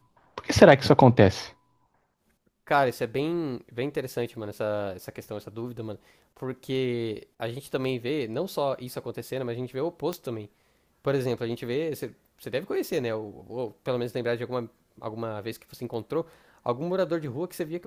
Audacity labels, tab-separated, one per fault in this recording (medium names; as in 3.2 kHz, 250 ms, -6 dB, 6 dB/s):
10.130000	10.130000	pop -17 dBFS